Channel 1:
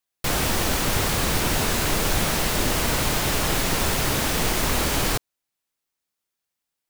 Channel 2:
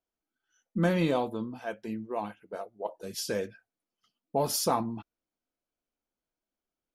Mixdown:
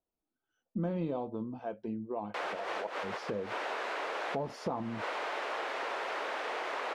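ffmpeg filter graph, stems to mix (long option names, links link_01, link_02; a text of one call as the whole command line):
ffmpeg -i stem1.wav -i stem2.wav -filter_complex "[0:a]highpass=frequency=460:width=0.5412,highpass=frequency=460:width=1.3066,adelay=2100,volume=-2.5dB[link_01];[1:a]equalizer=frequency=1800:width_type=o:width=0.97:gain=-11.5,volume=2dB,asplit=2[link_02][link_03];[link_03]apad=whole_len=396747[link_04];[link_01][link_04]sidechaincompress=threshold=-42dB:ratio=6:attack=24:release=108[link_05];[link_05][link_02]amix=inputs=2:normalize=0,lowpass=2000,acompressor=threshold=-35dB:ratio=2.5" out.wav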